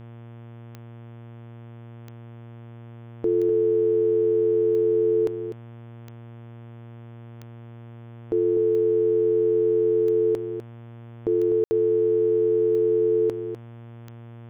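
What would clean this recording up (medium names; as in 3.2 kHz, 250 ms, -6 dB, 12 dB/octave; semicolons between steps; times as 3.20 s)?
de-click; de-hum 116.8 Hz, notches 30; room tone fill 11.64–11.71 s; inverse comb 250 ms -9.5 dB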